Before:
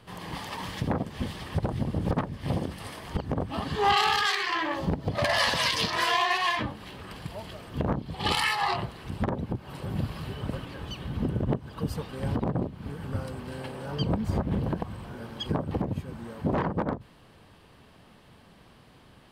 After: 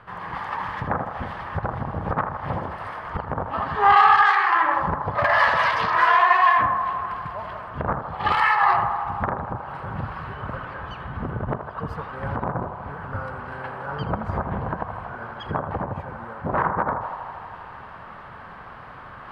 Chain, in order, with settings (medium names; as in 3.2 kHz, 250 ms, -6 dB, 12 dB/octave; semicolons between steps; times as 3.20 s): FFT filter 110 Hz 0 dB, 290 Hz -5 dB, 1.4 kHz +13 dB, 3.1 kHz -6 dB, 8.8 kHz -19 dB; reverse; upward compressor, threshold -32 dBFS; reverse; band-passed feedback delay 80 ms, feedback 84%, band-pass 890 Hz, level -7 dB